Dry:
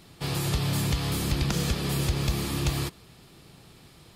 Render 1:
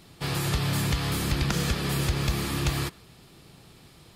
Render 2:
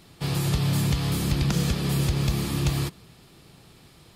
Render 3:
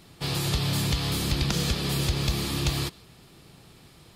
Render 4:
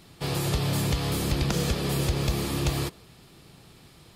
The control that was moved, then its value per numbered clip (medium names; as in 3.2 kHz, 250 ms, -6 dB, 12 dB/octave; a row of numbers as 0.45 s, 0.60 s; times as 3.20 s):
dynamic bell, frequency: 1.6 kHz, 160 Hz, 4 kHz, 520 Hz